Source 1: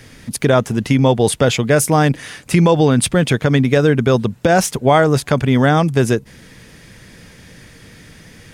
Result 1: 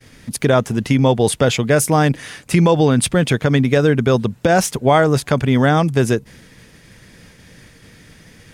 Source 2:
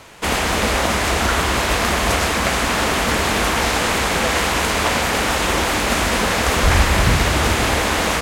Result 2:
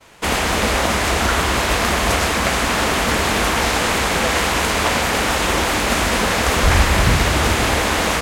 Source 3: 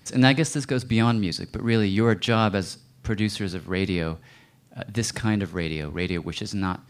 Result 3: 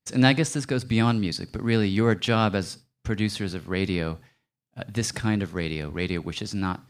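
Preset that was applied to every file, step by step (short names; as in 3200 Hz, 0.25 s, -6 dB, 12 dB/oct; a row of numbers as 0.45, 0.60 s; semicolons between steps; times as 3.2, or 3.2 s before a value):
expander -38 dBFS; normalise peaks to -2 dBFS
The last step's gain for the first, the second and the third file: -1.0, +0.5, -1.0 dB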